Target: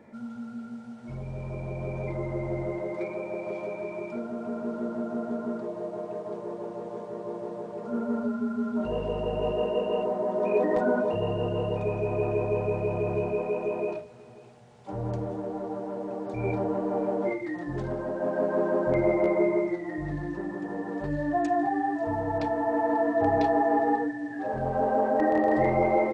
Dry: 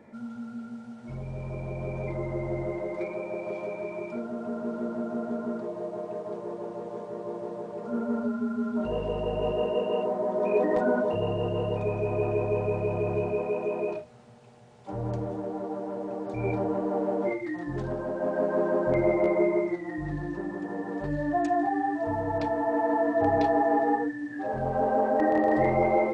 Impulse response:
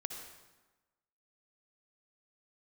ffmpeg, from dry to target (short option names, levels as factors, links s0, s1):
-af "aecho=1:1:539:0.0794"